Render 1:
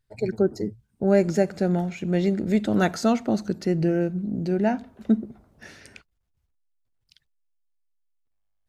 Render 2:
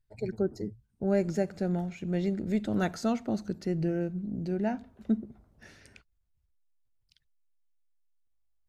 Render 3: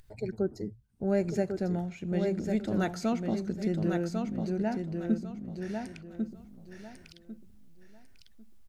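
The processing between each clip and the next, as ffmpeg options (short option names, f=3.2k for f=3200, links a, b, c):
-af "lowshelf=f=93:g=10,volume=-8.5dB"
-af "acompressor=mode=upward:threshold=-41dB:ratio=2.5,aecho=1:1:1098|2196|3294:0.562|0.141|0.0351,volume=-1dB"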